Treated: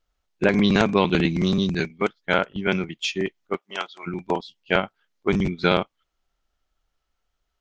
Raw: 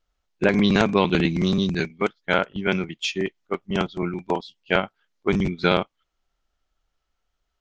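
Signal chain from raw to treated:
0:03.56–0:04.06: high-pass filter 540 Hz → 1,300 Hz 12 dB per octave

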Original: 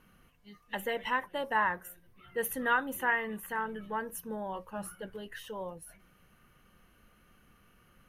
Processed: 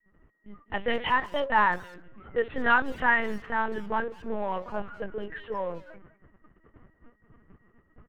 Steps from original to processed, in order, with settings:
mu-law and A-law mismatch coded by mu
low-pass that shuts in the quiet parts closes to 740 Hz, open at −25.5 dBFS
noise gate −54 dBFS, range −31 dB
automatic gain control gain up to 7 dB
steady tone 1,900 Hz −70 dBFS
linear-prediction vocoder at 8 kHz pitch kept
far-end echo of a speakerphone 200 ms, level −14 dB
level −1.5 dB

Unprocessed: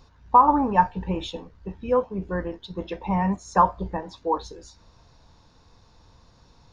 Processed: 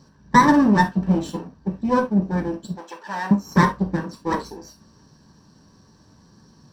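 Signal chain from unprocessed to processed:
lower of the sound and its delayed copy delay 0.67 ms
0:02.75–0:03.31: high-pass filter 810 Hz 12 dB per octave
convolution reverb, pre-delay 3 ms, DRR 2.5 dB
level −6 dB

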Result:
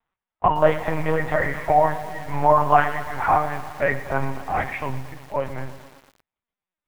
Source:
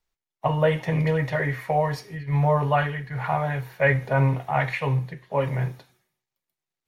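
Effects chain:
parametric band 1,000 Hz +14.5 dB 2.4 octaves, from 0:03.41 +6.5 dB
linear-prediction vocoder at 8 kHz pitch kept
feedback echo at a low word length 115 ms, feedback 80%, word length 5 bits, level −15 dB
level −5.5 dB

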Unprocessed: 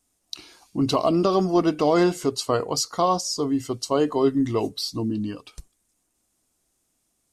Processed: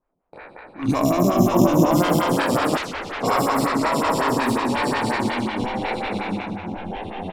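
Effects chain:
peak hold with a decay on every bin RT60 1.75 s
parametric band 430 Hz −13 dB 0.78 octaves
delay with pitch and tempo change per echo 455 ms, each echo −2 semitones, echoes 3
0:00.88–0:01.91: tilt shelving filter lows +8.5 dB, about 860 Hz
decimation without filtering 7×
repeating echo 231 ms, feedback 39%, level −3 dB
0:02.77–0:03.23: wrap-around overflow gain 18.5 dB
low-pass that shuts in the quiet parts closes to 760 Hz, open at −12.5 dBFS
phaser with staggered stages 5.5 Hz

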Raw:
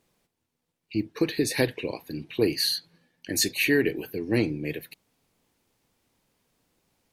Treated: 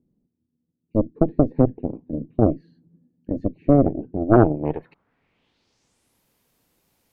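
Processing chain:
low-pass filter sweep 250 Hz → 14,000 Hz, 0:04.13–0:06.23
harmonic generator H 4 −7 dB, 7 −43 dB, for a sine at −8 dBFS
level +3 dB

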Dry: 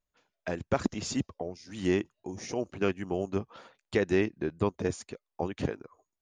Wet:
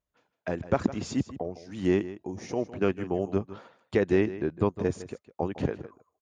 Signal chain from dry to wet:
high-pass filter 40 Hz
high-shelf EQ 2,300 Hz −9 dB
single-tap delay 157 ms −15 dB
level +3 dB

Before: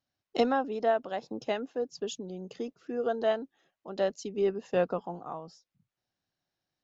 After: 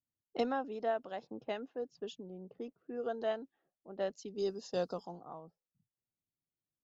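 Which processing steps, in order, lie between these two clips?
0:04.28–0:05.44: high shelf with overshoot 3,400 Hz +13 dB, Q 3
low-pass that shuts in the quiet parts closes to 340 Hz, open at −27.5 dBFS
level −7.5 dB

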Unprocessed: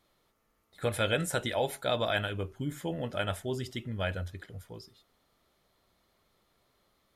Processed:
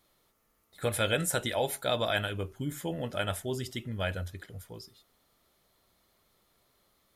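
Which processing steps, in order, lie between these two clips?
high-shelf EQ 7,100 Hz +9 dB

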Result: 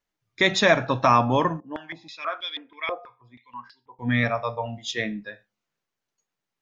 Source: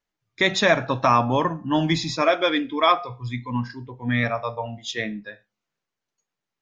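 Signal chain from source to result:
0:01.60–0:03.99: band-pass on a step sequencer 6.2 Hz 490–3,900 Hz

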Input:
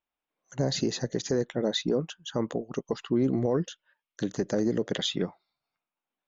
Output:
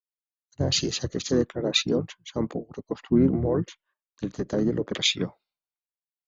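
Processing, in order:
pitch-shifted copies added −7 semitones −5 dB, −5 semitones −17 dB
multiband upward and downward expander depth 100%

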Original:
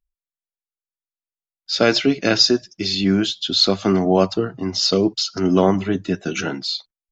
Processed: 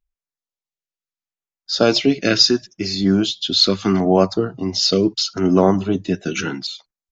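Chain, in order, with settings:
auto-filter notch saw down 0.75 Hz 450–5,200 Hz
downsampling to 16,000 Hz
level +1.5 dB

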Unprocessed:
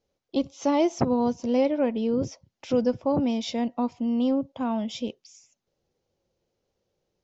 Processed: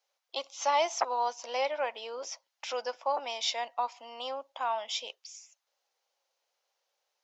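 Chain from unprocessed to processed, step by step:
high-pass filter 760 Hz 24 dB per octave
level +4 dB

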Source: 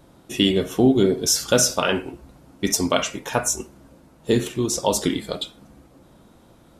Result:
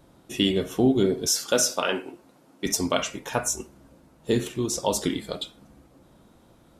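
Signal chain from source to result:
0:01.28–0:02.66: high-pass filter 240 Hz 12 dB per octave
level −4 dB

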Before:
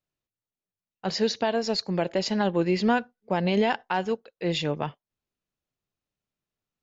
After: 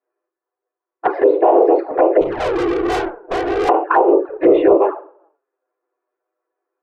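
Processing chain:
random phases in short frames
linear-phase brick-wall high-pass 310 Hz
tuned comb filter 570 Hz, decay 0.56 s, mix 40%
convolution reverb RT60 0.45 s, pre-delay 3 ms, DRR 0 dB
0:04.29–0:04.78: leveller curve on the samples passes 1
low-pass filter 1,300 Hz 24 dB per octave
0:02.21–0:03.69: tube saturation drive 36 dB, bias 0.45
flanger swept by the level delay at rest 8.1 ms, full sweep at −26.5 dBFS
boost into a limiter +23.5 dB
level −2 dB

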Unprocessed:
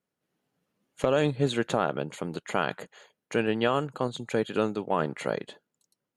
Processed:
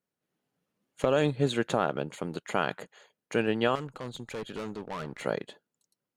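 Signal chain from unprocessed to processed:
in parallel at −8.5 dB: dead-zone distortion −44.5 dBFS
0:03.75–0:05.23: on the sum: tube saturation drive 29 dB, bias 0.4
level −3.5 dB

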